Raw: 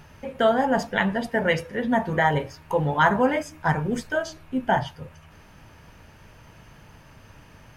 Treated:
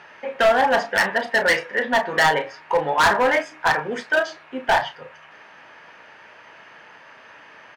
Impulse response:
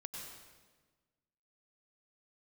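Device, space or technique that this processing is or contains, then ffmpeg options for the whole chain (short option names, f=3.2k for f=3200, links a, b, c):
megaphone: -filter_complex "[0:a]highpass=520,lowpass=3.6k,equalizer=f=1.8k:t=o:w=0.54:g=5,asoftclip=type=hard:threshold=-20dB,asplit=2[a][b];[b]adelay=33,volume=-10.5dB[c];[a][c]amix=inputs=2:normalize=0,volume=7dB"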